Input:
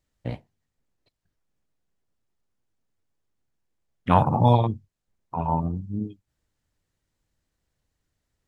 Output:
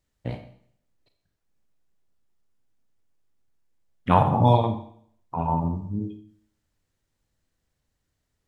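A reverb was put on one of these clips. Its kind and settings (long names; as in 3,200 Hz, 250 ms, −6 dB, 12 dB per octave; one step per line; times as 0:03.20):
four-comb reverb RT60 0.61 s, combs from 28 ms, DRR 7.5 dB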